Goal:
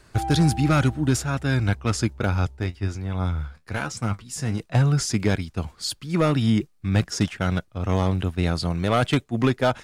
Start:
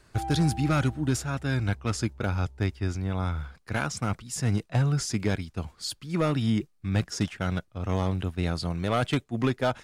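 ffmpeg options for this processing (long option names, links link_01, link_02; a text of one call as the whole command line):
ffmpeg -i in.wav -filter_complex "[0:a]asplit=3[link_01][link_02][link_03];[link_01]afade=type=out:start_time=2.55:duration=0.02[link_04];[link_02]flanger=delay=8.1:depth=6:regen=56:speed=1:shape=triangular,afade=type=in:start_time=2.55:duration=0.02,afade=type=out:start_time=4.59:duration=0.02[link_05];[link_03]afade=type=in:start_time=4.59:duration=0.02[link_06];[link_04][link_05][link_06]amix=inputs=3:normalize=0,volume=5dB" out.wav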